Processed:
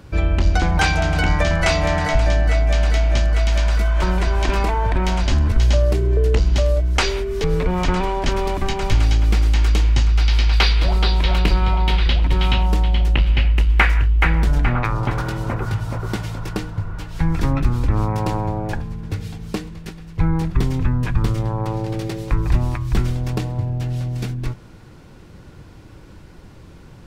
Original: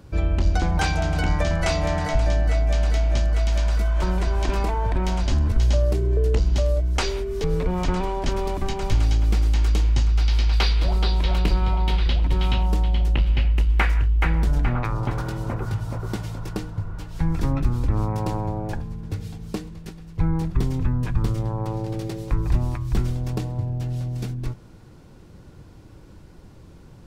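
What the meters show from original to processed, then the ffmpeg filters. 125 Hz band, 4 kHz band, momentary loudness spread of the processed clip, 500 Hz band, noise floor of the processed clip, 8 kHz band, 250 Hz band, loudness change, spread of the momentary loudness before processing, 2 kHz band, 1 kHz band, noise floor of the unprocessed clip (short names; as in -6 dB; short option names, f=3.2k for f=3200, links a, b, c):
+3.5 dB, +6.5 dB, 9 LU, +4.0 dB, -42 dBFS, n/a, +3.5 dB, +4.0 dB, 9 LU, +8.0 dB, +5.5 dB, -46 dBFS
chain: -af "equalizer=f=2.1k:w=0.68:g=5,volume=3.5dB"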